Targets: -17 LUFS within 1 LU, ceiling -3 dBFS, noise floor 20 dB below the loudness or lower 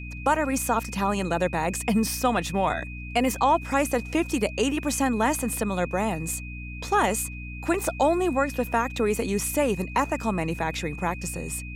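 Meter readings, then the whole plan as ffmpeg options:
hum 60 Hz; highest harmonic 300 Hz; hum level -35 dBFS; steady tone 2.5 kHz; tone level -40 dBFS; loudness -25.5 LUFS; peak level -10.0 dBFS; loudness target -17.0 LUFS
-> -af "bandreject=f=60:t=h:w=4,bandreject=f=120:t=h:w=4,bandreject=f=180:t=h:w=4,bandreject=f=240:t=h:w=4,bandreject=f=300:t=h:w=4"
-af "bandreject=f=2500:w=30"
-af "volume=2.66,alimiter=limit=0.708:level=0:latency=1"

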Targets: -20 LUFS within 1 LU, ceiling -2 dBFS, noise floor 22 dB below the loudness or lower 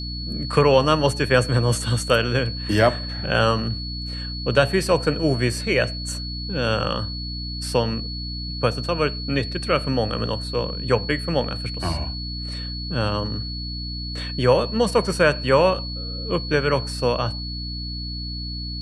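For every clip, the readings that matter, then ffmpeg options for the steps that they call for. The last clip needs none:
hum 60 Hz; highest harmonic 300 Hz; hum level -29 dBFS; steady tone 4.4 kHz; tone level -32 dBFS; loudness -22.5 LUFS; peak level -2.5 dBFS; loudness target -20.0 LUFS
-> -af "bandreject=f=60:t=h:w=4,bandreject=f=120:t=h:w=4,bandreject=f=180:t=h:w=4,bandreject=f=240:t=h:w=4,bandreject=f=300:t=h:w=4"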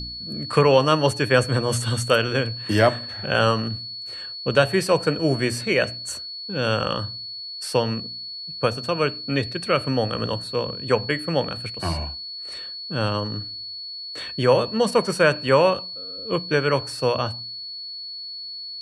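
hum not found; steady tone 4.4 kHz; tone level -32 dBFS
-> -af "bandreject=f=4400:w=30"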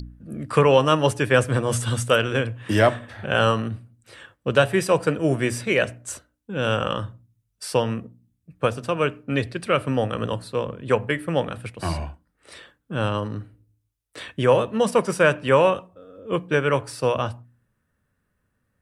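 steady tone not found; loudness -22.5 LUFS; peak level -3.0 dBFS; loudness target -20.0 LUFS
-> -af "volume=1.33,alimiter=limit=0.794:level=0:latency=1"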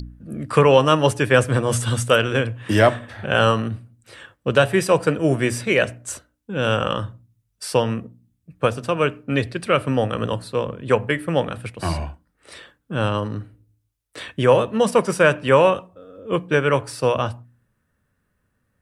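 loudness -20.0 LUFS; peak level -2.0 dBFS; noise floor -71 dBFS

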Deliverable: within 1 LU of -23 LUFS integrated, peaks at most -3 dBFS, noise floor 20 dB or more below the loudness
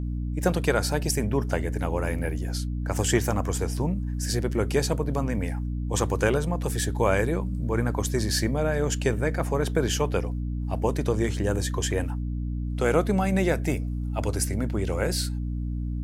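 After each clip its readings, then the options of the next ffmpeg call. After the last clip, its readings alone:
hum 60 Hz; highest harmonic 300 Hz; hum level -27 dBFS; loudness -26.5 LUFS; peak level -7.5 dBFS; loudness target -23.0 LUFS
-> -af "bandreject=f=60:t=h:w=6,bandreject=f=120:t=h:w=6,bandreject=f=180:t=h:w=6,bandreject=f=240:t=h:w=6,bandreject=f=300:t=h:w=6"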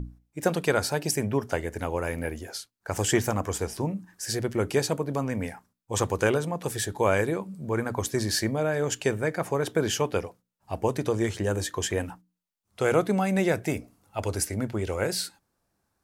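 hum not found; loudness -28.0 LUFS; peak level -9.0 dBFS; loudness target -23.0 LUFS
-> -af "volume=1.78"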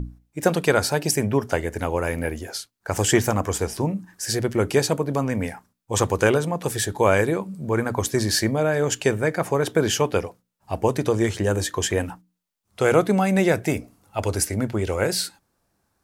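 loudness -23.0 LUFS; peak level -4.0 dBFS; noise floor -74 dBFS

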